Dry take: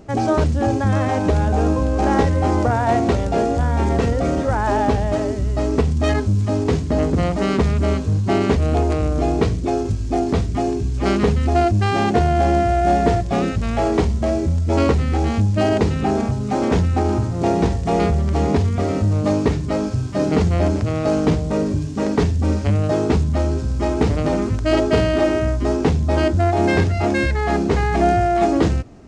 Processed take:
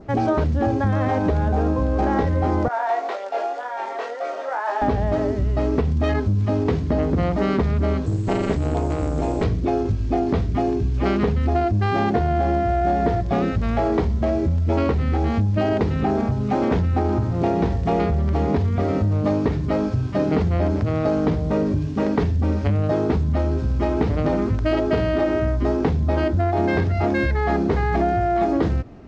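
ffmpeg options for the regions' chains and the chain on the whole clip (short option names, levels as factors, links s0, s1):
-filter_complex "[0:a]asettb=1/sr,asplit=3[s0][s1][s2];[s0]atrim=end=2.684[s3];[s1]atrim=start=2.68:end=4.82,asetpts=PTS-STARTPTS,afade=t=in:d=0.004:c=qsin,afade=t=out:st=2.136:d=0.004:c=qsin,highpass=f=550:w=0.5412,highpass=f=550:w=1.3066,flanger=delay=20:depth=2.9:speed=1.9[s4];[s2]atrim=start=4.816[s5];[s3][s4]acrossfade=d=0.004:c1=hsin:c2=qsin[s6];[s6][s5]acrossfade=d=0.004:c1=qsin:c2=hsin,asettb=1/sr,asplit=3[s7][s8][s9];[s7]atrim=end=8.064[s10];[s8]atrim=start=8.06:end=9.44,asetpts=PTS-STARTPTS,afade=t=in:d=0.004:c=qsin,afade=t=out:st=1.376:d=0.004:c=qsin,acrusher=bits=6:mix=0:aa=0.5,lowpass=f=7800:t=q:w=9.6,tremolo=f=220:d=0.824[s11];[s9]atrim=start=9.436[s12];[s10][s11]acrossfade=d=0.004:c1=hsin:c2=qsin[s13];[s13][s12]acrossfade=d=0.004:c1=qsin:c2=hsin,lowpass=3600,adynamicequalizer=threshold=0.00447:dfrequency=2700:dqfactor=2.9:tfrequency=2700:tqfactor=2.9:attack=5:release=100:ratio=0.375:range=2.5:mode=cutabove:tftype=bell,acompressor=threshold=0.141:ratio=6,volume=1.12"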